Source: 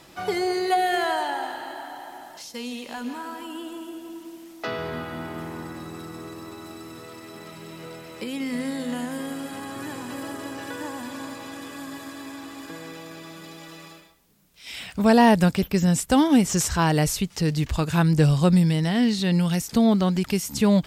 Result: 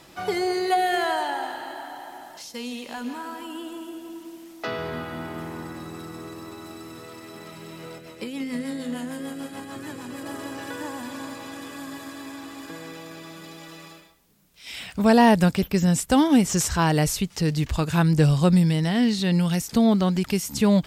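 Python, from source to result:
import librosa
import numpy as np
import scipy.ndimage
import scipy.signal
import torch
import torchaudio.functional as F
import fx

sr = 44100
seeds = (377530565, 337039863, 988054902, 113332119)

y = fx.rotary(x, sr, hz=6.7, at=(7.98, 10.26))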